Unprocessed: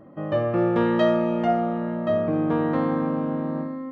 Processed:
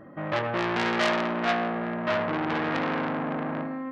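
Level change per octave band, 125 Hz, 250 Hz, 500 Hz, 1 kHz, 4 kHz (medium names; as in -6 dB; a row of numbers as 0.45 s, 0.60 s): -7.0 dB, -6.5 dB, -6.0 dB, 0.0 dB, +7.0 dB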